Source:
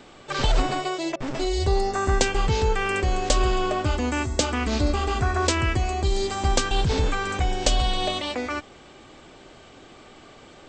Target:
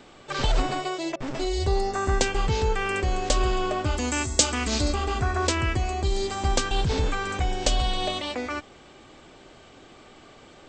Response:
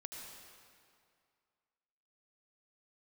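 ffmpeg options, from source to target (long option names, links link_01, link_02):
-filter_complex "[0:a]asplit=3[link_01][link_02][link_03];[link_01]afade=type=out:start_time=3.96:duration=0.02[link_04];[link_02]aemphasis=mode=production:type=75fm,afade=type=in:start_time=3.96:duration=0.02,afade=type=out:start_time=4.93:duration=0.02[link_05];[link_03]afade=type=in:start_time=4.93:duration=0.02[link_06];[link_04][link_05][link_06]amix=inputs=3:normalize=0,volume=-2dB"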